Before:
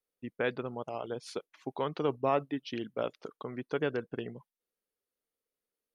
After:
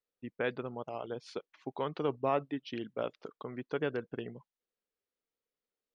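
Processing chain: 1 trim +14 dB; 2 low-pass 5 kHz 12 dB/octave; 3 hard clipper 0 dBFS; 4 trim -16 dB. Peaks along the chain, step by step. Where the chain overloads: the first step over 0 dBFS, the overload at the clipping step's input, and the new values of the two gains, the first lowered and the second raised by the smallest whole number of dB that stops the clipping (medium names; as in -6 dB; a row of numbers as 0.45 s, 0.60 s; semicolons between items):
-2.0 dBFS, -2.0 dBFS, -2.0 dBFS, -18.0 dBFS; nothing clips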